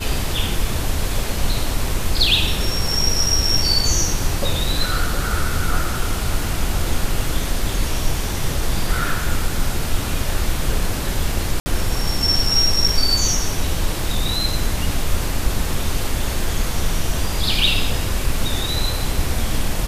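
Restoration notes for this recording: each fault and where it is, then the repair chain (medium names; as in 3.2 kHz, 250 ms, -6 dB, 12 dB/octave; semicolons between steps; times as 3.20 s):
11.60–11.66 s: dropout 60 ms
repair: interpolate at 11.60 s, 60 ms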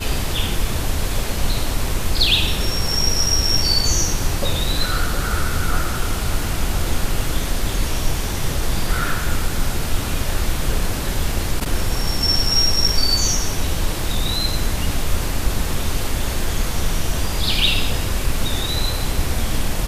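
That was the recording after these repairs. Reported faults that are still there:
nothing left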